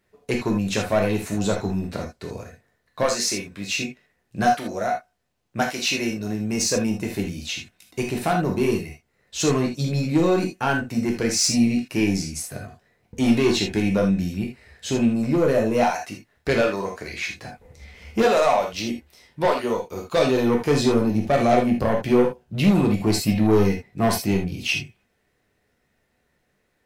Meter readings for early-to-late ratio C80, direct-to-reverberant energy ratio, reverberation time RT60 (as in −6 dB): 13.5 dB, −0.5 dB, non-exponential decay